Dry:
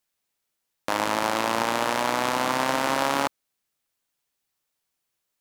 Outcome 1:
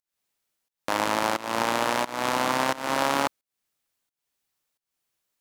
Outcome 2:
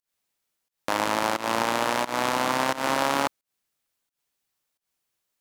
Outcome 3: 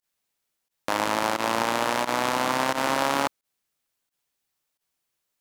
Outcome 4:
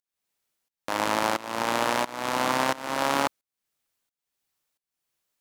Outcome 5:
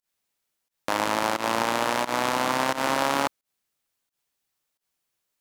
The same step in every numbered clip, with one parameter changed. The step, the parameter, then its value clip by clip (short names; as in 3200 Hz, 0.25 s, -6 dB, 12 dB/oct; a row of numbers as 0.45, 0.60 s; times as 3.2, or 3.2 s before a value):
pump, release: 319, 174, 72, 500, 115 ms